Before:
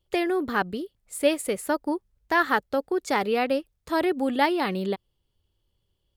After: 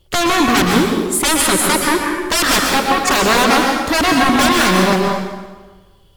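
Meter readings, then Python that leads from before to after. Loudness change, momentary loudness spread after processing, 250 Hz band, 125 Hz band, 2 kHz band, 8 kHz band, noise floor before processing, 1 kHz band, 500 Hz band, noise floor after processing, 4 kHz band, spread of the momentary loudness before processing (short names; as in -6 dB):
+12.5 dB, 5 LU, +11.5 dB, n/a, +13.0 dB, +22.5 dB, -76 dBFS, +12.5 dB, +7.5 dB, -49 dBFS, +19.0 dB, 8 LU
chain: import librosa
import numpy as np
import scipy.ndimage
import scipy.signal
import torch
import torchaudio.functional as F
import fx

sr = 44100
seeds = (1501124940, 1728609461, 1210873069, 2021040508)

y = fx.fold_sine(x, sr, drive_db=19, ceiling_db=-8.5)
y = fx.rev_plate(y, sr, seeds[0], rt60_s=1.3, hf_ratio=0.8, predelay_ms=105, drr_db=0.0)
y = y * 10.0 ** (-3.5 / 20.0)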